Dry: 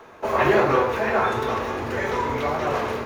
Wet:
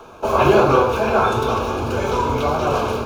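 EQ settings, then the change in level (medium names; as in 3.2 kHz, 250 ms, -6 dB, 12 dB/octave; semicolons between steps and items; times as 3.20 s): Butterworth band-stop 1.9 kHz, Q 2.6; bass shelf 88 Hz +9 dB; peaking EQ 8.3 kHz +3 dB 1.8 oct; +4.5 dB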